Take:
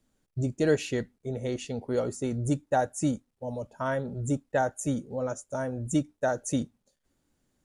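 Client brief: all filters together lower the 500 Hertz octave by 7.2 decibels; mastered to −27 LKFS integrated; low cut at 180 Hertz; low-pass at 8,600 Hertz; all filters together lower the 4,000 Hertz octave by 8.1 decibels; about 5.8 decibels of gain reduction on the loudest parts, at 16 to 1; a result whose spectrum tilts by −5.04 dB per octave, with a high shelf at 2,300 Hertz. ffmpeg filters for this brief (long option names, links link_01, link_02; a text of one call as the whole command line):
ffmpeg -i in.wav -af "highpass=180,lowpass=8600,equalizer=frequency=500:width_type=o:gain=-8.5,highshelf=frequency=2300:gain=-3.5,equalizer=frequency=4000:width_type=o:gain=-7.5,acompressor=threshold=-30dB:ratio=16,volume=11.5dB" out.wav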